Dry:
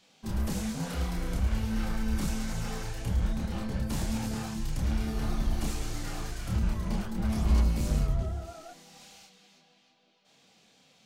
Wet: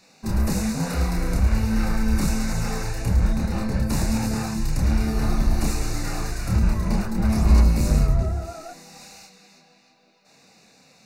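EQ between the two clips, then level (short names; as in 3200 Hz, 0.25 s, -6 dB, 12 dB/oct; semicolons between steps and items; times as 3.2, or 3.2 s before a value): Butterworth band-stop 3200 Hz, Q 3.5; +8.5 dB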